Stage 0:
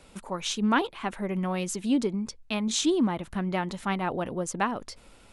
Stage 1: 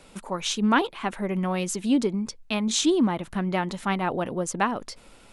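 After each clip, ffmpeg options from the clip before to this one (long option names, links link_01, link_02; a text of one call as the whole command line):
ffmpeg -i in.wav -af "equalizer=frequency=61:width_type=o:width=0.94:gain=-8,volume=3dB" out.wav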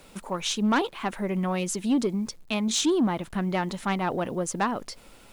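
ffmpeg -i in.wav -af "acrusher=bits=9:mix=0:aa=0.000001,asoftclip=type=tanh:threshold=-16dB" out.wav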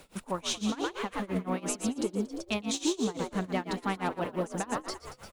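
ffmpeg -i in.wav -filter_complex "[0:a]acompressor=threshold=-26dB:ratio=6,asplit=2[link_01][link_02];[link_02]asplit=8[link_03][link_04][link_05][link_06][link_07][link_08][link_09][link_10];[link_03]adelay=116,afreqshift=66,volume=-5dB[link_11];[link_04]adelay=232,afreqshift=132,volume=-9.7dB[link_12];[link_05]adelay=348,afreqshift=198,volume=-14.5dB[link_13];[link_06]adelay=464,afreqshift=264,volume=-19.2dB[link_14];[link_07]adelay=580,afreqshift=330,volume=-23.9dB[link_15];[link_08]adelay=696,afreqshift=396,volume=-28.7dB[link_16];[link_09]adelay=812,afreqshift=462,volume=-33.4dB[link_17];[link_10]adelay=928,afreqshift=528,volume=-38.1dB[link_18];[link_11][link_12][link_13][link_14][link_15][link_16][link_17][link_18]amix=inputs=8:normalize=0[link_19];[link_01][link_19]amix=inputs=2:normalize=0,tremolo=f=5.9:d=0.93" out.wav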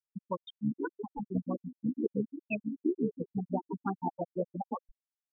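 ffmpeg -i in.wav -af "tremolo=f=71:d=0.75,afftfilt=real='re*gte(hypot(re,im),0.0891)':imag='im*gte(hypot(re,im),0.0891)':win_size=1024:overlap=0.75,tiltshelf=frequency=1400:gain=-4,volume=6.5dB" out.wav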